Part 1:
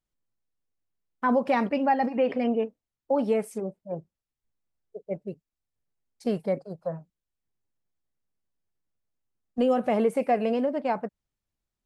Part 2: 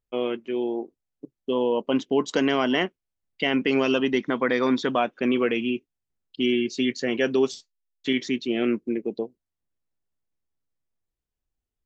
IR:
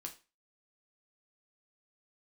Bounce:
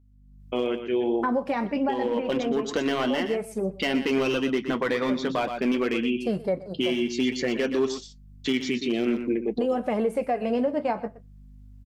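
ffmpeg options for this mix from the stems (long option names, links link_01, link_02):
-filter_complex "[0:a]aeval=exprs='val(0)+0.002*(sin(2*PI*50*n/s)+sin(2*PI*2*50*n/s)/2+sin(2*PI*3*50*n/s)/3+sin(2*PI*4*50*n/s)/4+sin(2*PI*5*50*n/s)/5)':channel_layout=same,volume=-1dB,asplit=3[link_01][link_02][link_03];[link_02]volume=-5.5dB[link_04];[link_03]volume=-17.5dB[link_05];[1:a]volume=16.5dB,asoftclip=hard,volume=-16.5dB,adelay=400,volume=2dB,asplit=2[link_06][link_07];[link_07]volume=-10.5dB[link_08];[2:a]atrim=start_sample=2205[link_09];[link_04][link_09]afir=irnorm=-1:irlink=0[link_10];[link_05][link_08]amix=inputs=2:normalize=0,aecho=0:1:121:1[link_11];[link_01][link_06][link_10][link_11]amix=inputs=4:normalize=0,dynaudnorm=framelen=120:gausssize=5:maxgain=9.5dB,flanger=delay=2.8:depth=7.4:regen=-57:speed=0.51:shape=triangular,alimiter=limit=-16.5dB:level=0:latency=1:release=469"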